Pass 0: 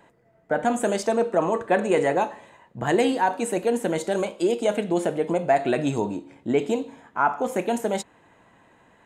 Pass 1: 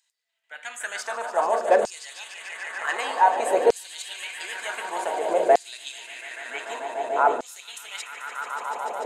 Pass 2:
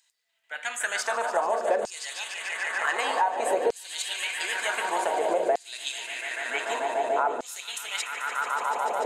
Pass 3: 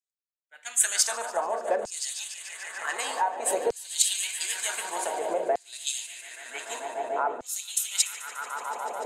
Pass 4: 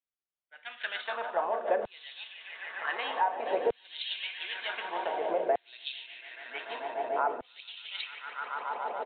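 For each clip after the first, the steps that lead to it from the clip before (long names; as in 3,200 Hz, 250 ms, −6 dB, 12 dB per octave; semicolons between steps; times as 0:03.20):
echo that builds up and dies away 146 ms, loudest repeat 5, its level −11.5 dB; auto-filter high-pass saw down 0.54 Hz 460–5,300 Hz; level −2.5 dB
downward compressor 5 to 1, threshold −27 dBFS, peak gain reduction 13.5 dB; level +4.5 dB
bass and treble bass +2 dB, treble +13 dB; multiband upward and downward expander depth 100%; level −5 dB
downsampling to 8,000 Hz; level −1.5 dB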